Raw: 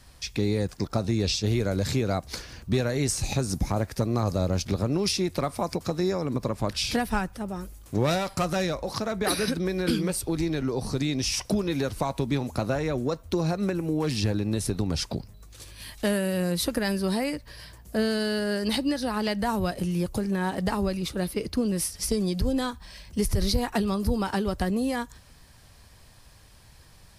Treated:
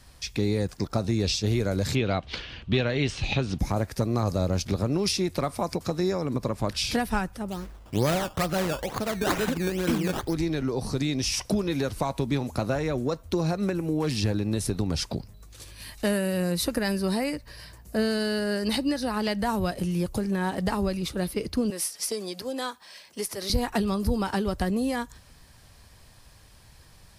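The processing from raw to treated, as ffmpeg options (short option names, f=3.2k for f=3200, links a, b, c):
-filter_complex "[0:a]asettb=1/sr,asplit=3[a][b][c];[a]atrim=end=1.954[d];[b]atrim=start=1.95:end=3.59,asetpts=PTS-STARTPTS,afade=t=in:d=0.004:c=qsin,afade=t=out:st=1.636:d=0.004:c=qsin,lowpass=f=3.1k:t=q:w=3.9[e];[c]atrim=start=3.586[f];[d][e]acrossfade=d=0.004:c1=hsin:c2=qsin[g];[g][f]acrossfade=d=0.004:c1=qsin:c2=hsin,asplit=3[h][i][j];[h]afade=t=out:st=7.5:d=0.02[k];[i]acrusher=samples=15:mix=1:aa=0.000001:lfo=1:lforange=15:lforate=2.2,afade=t=in:st=7.5:d=0.02,afade=t=out:st=10.33:d=0.02[l];[j]afade=t=in:st=10.33:d=0.02[m];[k][l][m]amix=inputs=3:normalize=0,asettb=1/sr,asplit=3[n][o][p];[n]atrim=end=15.744[q];[o]atrim=start=15.74:end=19.17,asetpts=PTS-STARTPTS,afade=t=in:d=0.004:c=qsin,afade=t=out:st=3.426:d=0.004:c=qsin,bandreject=f=3.3k:w=12[r];[p]atrim=start=19.166[s];[q][r]acrossfade=d=0.004:c1=hsin:c2=qsin[t];[t][s]acrossfade=d=0.004:c1=qsin:c2=hsin,asettb=1/sr,asplit=3[u][v][w];[u]atrim=end=21.704[x];[v]atrim=start=21.7:end=23.5,asetpts=PTS-STARTPTS,afade=t=in:d=0.004:c=qsin,afade=t=out:st=1.796:d=0.004:c=qsin,highpass=430[y];[w]atrim=start=23.496[z];[x][y]acrossfade=d=0.004:c1=hsin:c2=qsin[aa];[aa][z]acrossfade=d=0.004:c1=qsin:c2=hsin"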